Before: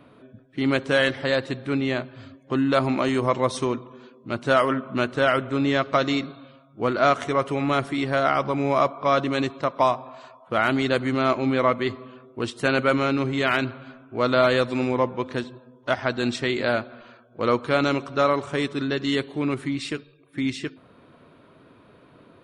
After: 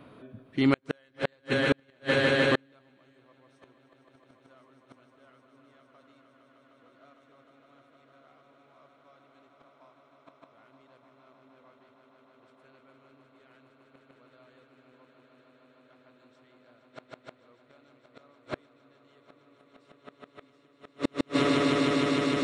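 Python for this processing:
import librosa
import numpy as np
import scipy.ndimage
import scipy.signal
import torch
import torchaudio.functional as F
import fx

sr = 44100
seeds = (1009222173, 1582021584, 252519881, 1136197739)

y = fx.echo_swell(x, sr, ms=153, loudest=8, wet_db=-8.0)
y = fx.gate_flip(y, sr, shuts_db=-12.0, range_db=-41)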